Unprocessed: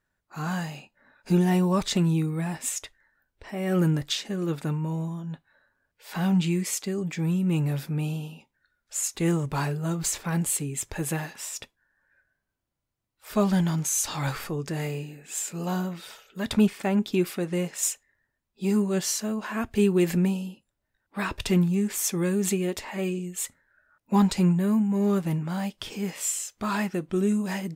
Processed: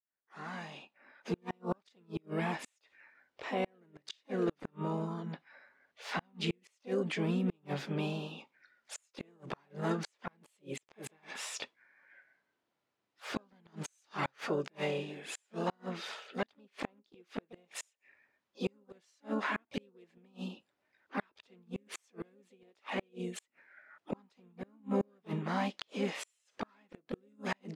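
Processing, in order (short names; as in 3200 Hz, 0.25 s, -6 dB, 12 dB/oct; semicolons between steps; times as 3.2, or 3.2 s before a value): opening faded in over 2.30 s; HPF 280 Hz 12 dB/oct; flipped gate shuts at -22 dBFS, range -40 dB; LPF 3900 Hz 12 dB/oct; harmoniser +4 st -10 dB, +5 st -8 dB; in parallel at +1 dB: compressor, threshold -47 dBFS, peak gain reduction 19.5 dB; on the sum: gain -1.5 dB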